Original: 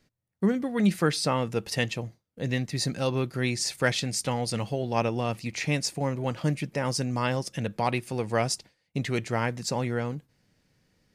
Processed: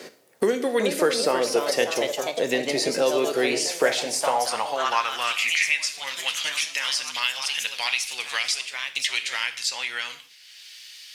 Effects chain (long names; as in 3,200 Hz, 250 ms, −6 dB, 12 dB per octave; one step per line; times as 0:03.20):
high-pass filter sweep 430 Hz → 3,200 Hz, 0:03.83–0:06.12
in parallel at +2 dB: downward compressor, threshold −35 dBFS, peak gain reduction 18.5 dB
on the sum: harmonic generator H 2 −42 dB, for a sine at −4.5 dBFS
on a send at −8.5 dB: convolution reverb, pre-delay 5 ms
on the sum: delay with pitch and tempo change per echo 426 ms, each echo +2 semitones, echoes 3, each echo −6 dB
multiband upward and downward compressor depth 70%